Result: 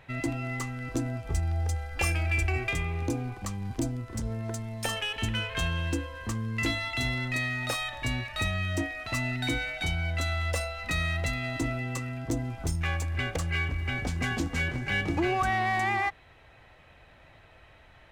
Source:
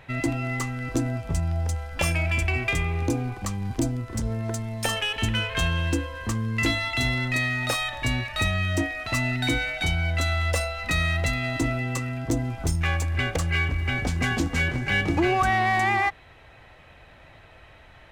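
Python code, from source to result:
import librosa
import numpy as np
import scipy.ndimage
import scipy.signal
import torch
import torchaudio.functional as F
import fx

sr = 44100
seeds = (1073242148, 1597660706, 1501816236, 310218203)

y = fx.comb(x, sr, ms=2.5, depth=0.68, at=(1.26, 2.68))
y = y * librosa.db_to_amplitude(-5.0)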